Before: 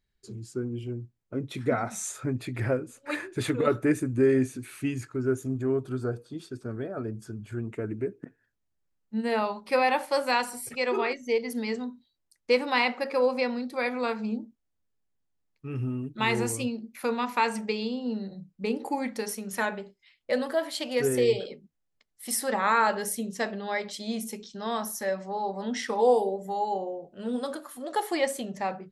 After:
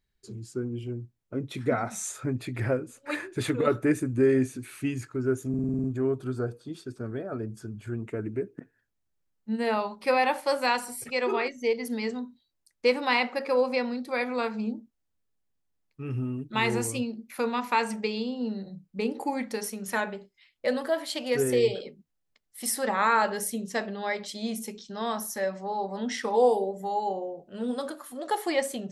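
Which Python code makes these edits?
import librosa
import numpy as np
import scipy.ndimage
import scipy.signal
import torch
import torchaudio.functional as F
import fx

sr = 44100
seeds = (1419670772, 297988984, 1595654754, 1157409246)

y = fx.edit(x, sr, fx.stutter(start_s=5.49, slice_s=0.05, count=8), tone=tone)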